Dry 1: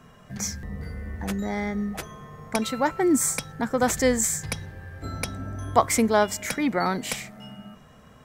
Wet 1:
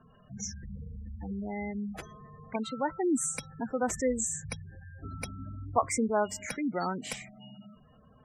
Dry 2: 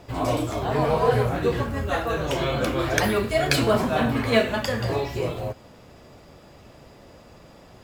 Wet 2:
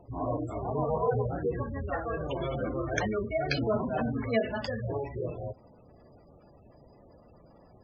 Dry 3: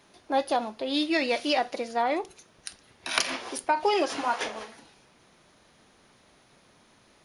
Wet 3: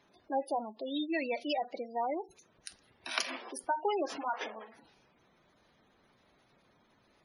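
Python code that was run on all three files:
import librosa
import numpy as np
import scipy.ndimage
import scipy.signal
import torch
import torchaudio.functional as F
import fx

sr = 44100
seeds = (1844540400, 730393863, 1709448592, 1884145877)

y = fx.spec_gate(x, sr, threshold_db=-15, keep='strong')
y = F.gain(torch.from_numpy(y), -7.0).numpy()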